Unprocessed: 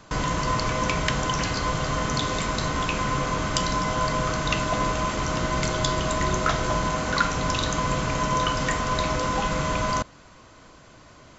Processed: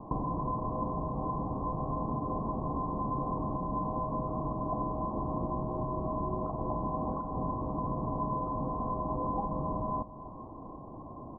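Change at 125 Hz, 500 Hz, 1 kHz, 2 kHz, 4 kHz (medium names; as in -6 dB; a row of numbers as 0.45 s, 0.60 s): -8.0 dB, -8.0 dB, -8.0 dB, under -40 dB, under -40 dB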